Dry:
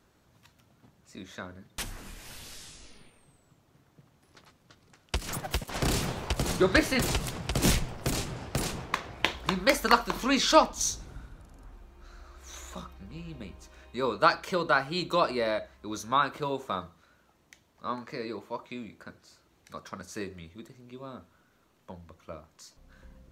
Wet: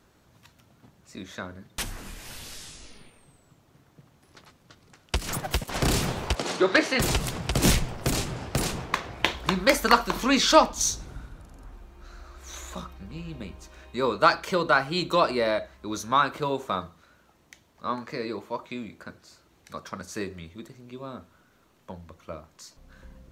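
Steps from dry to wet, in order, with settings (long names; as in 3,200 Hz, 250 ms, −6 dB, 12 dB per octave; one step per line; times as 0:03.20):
in parallel at −9 dB: soft clipping −19.5 dBFS, distortion −10 dB
0:06.35–0:07.00: on the sum: band-pass filter 310–6,100 Hz
level +1.5 dB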